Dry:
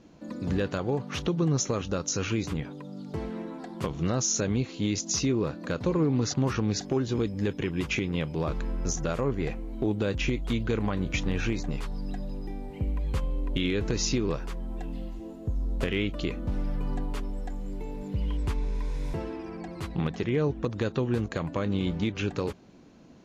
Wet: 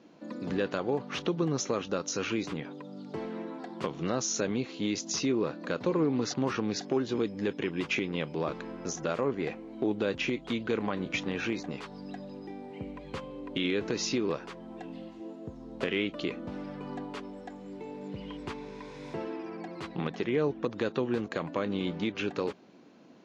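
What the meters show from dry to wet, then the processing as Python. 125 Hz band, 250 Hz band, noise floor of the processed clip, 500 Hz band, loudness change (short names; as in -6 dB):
-10.0 dB, -2.5 dB, -47 dBFS, -0.5 dB, -3.0 dB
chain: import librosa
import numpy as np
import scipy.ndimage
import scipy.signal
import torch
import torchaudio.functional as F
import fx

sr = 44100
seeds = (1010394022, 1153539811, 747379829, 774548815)

y = fx.bandpass_edges(x, sr, low_hz=230.0, high_hz=5200.0)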